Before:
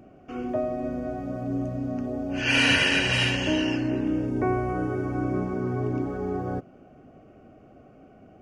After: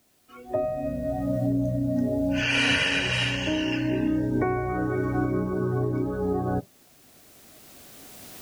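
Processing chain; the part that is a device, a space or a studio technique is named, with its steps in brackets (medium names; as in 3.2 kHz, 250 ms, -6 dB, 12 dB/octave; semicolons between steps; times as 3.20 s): spectral noise reduction 19 dB; cheap recorder with automatic gain (white noise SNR 37 dB; recorder AGC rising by 8.7 dB/s); 3.72–5.32 s: peaking EQ 2.3 kHz +4.5 dB 1.6 oct; trim -2 dB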